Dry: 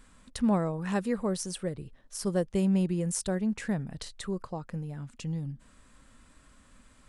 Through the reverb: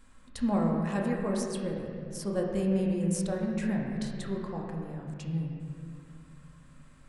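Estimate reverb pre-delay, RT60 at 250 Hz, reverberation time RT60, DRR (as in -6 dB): 4 ms, 2.9 s, 2.5 s, -2.0 dB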